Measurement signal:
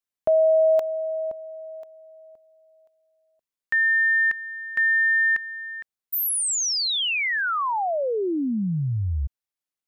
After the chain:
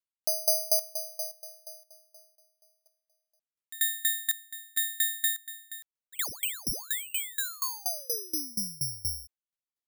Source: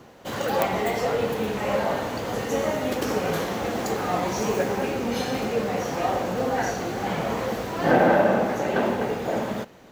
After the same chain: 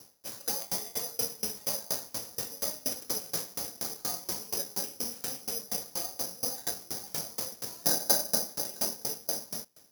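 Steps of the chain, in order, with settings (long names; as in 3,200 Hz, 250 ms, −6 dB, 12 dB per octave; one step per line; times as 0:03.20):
bad sample-rate conversion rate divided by 8×, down none, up zero stuff
tremolo with a ramp in dB decaying 4.2 Hz, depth 26 dB
level −11 dB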